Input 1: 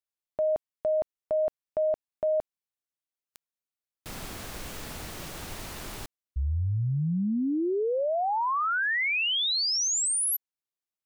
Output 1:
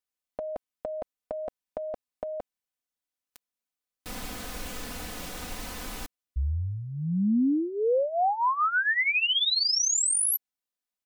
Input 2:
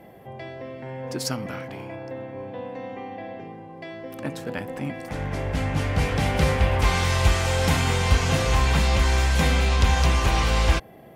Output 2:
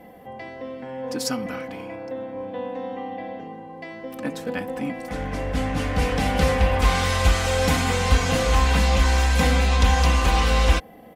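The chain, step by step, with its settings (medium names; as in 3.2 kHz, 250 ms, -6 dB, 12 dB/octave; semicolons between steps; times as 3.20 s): comb 4 ms, depth 67%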